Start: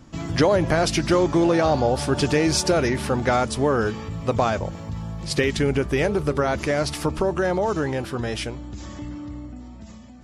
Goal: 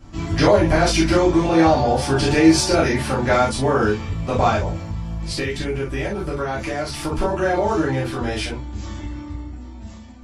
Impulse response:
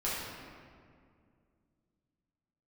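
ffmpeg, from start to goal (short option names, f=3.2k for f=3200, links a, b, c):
-filter_complex "[1:a]atrim=start_sample=2205,atrim=end_sample=6174,asetrate=83790,aresample=44100[a];[0:a][a]afir=irnorm=-1:irlink=0,asplit=3[b][c][d];[b]afade=t=out:st=4.83:d=0.02[e];[c]acompressor=threshold=-28dB:ratio=2.5,afade=t=in:st=4.83:d=0.02,afade=t=out:st=7.11:d=0.02[f];[d]afade=t=in:st=7.11:d=0.02[g];[e][f][g]amix=inputs=3:normalize=0,volume=4dB"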